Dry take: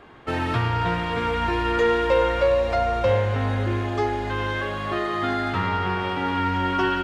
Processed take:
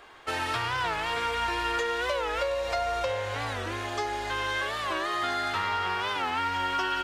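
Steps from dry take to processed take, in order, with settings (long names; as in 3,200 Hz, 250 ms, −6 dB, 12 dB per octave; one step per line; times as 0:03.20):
bass and treble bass −6 dB, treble +9 dB
downward compressor, threshold −22 dBFS, peak gain reduction 6.5 dB
parametric band 190 Hz −13 dB 2.3 octaves
wow of a warped record 45 rpm, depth 160 cents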